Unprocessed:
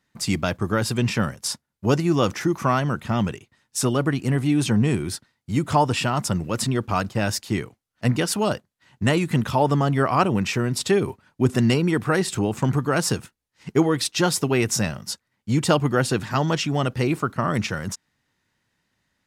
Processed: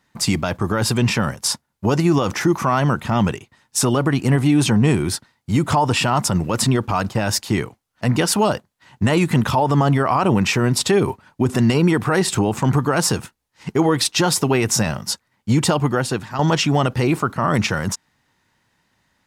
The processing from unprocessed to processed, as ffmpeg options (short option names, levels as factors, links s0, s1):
-filter_complex "[0:a]asplit=2[s0][s1];[s0]atrim=end=16.39,asetpts=PTS-STARTPTS,afade=t=out:st=15.61:d=0.78:silence=0.199526[s2];[s1]atrim=start=16.39,asetpts=PTS-STARTPTS,afade=t=in:d=0.004:c=hsin:silence=0.199526[s3];[s2][s3]concat=n=2:v=0:a=1,equalizer=f=900:w=1.9:g=5,alimiter=level_in=4.73:limit=0.891:release=50:level=0:latency=1,volume=0.447"